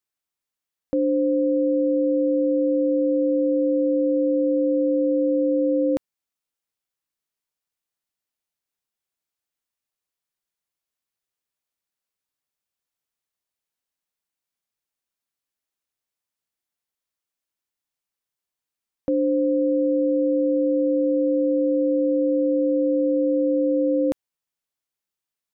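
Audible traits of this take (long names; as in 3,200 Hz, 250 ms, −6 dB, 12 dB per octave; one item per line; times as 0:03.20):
background noise floor −88 dBFS
spectral slope −2.5 dB per octave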